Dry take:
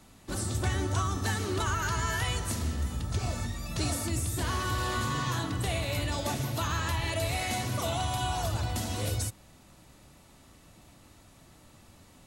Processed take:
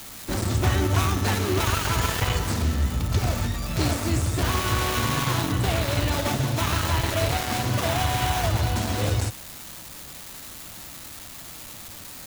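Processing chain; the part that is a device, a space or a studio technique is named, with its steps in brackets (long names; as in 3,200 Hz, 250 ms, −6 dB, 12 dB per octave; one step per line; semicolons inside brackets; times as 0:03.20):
low-pass filter 6,400 Hz 12 dB per octave
budget class-D amplifier (gap after every zero crossing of 0.3 ms; spike at every zero crossing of −28.5 dBFS)
level +8 dB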